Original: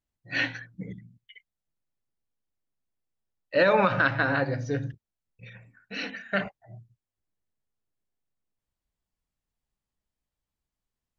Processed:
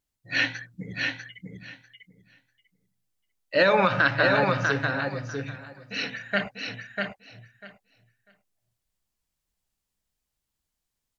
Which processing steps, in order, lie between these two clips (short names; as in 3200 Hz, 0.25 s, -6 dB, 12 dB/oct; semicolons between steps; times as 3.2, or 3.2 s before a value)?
high shelf 2800 Hz +8.5 dB; wow and flutter 29 cents; on a send: feedback echo 0.645 s, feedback 16%, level -4 dB